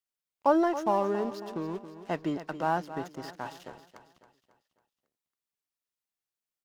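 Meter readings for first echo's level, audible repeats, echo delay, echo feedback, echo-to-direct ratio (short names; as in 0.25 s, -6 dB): -12.5 dB, 4, 0.274 s, 46%, -11.5 dB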